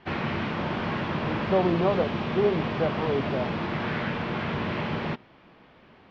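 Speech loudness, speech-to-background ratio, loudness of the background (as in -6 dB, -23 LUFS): -27.5 LUFS, 2.5 dB, -30.0 LUFS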